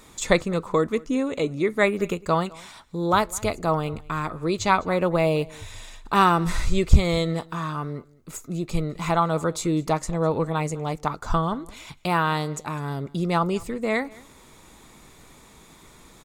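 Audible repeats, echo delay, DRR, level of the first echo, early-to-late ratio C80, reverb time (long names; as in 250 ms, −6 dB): 1, 205 ms, no reverb audible, −23.5 dB, no reverb audible, no reverb audible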